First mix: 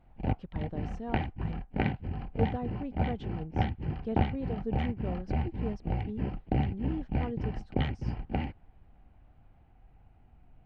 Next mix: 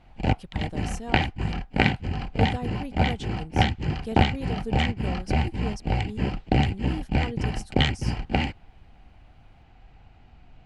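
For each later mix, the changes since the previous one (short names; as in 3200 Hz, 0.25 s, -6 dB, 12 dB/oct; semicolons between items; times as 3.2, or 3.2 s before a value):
background +6.0 dB; master: remove tape spacing loss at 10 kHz 38 dB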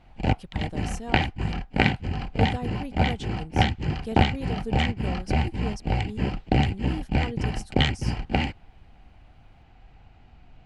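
none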